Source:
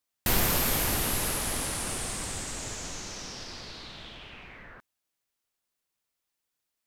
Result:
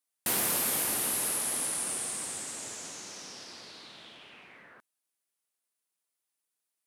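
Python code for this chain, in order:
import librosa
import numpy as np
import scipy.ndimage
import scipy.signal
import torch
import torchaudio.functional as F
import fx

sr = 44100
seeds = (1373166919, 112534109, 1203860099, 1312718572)

y = scipy.signal.sosfilt(scipy.signal.butter(2, 210.0, 'highpass', fs=sr, output='sos'), x)
y = fx.peak_eq(y, sr, hz=9800.0, db=9.5, octaves=0.57)
y = y * librosa.db_to_amplitude(-5.0)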